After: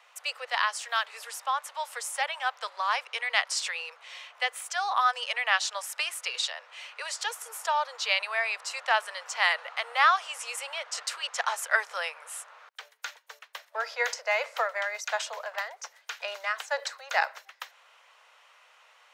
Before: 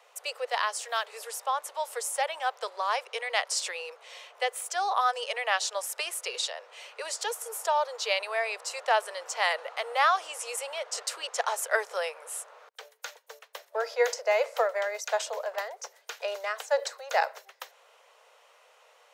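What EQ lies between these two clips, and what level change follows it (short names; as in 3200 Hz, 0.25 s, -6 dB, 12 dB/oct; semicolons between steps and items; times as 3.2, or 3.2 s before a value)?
HPF 1200 Hz 12 dB/oct; high shelf 5000 Hz -11 dB; +6.0 dB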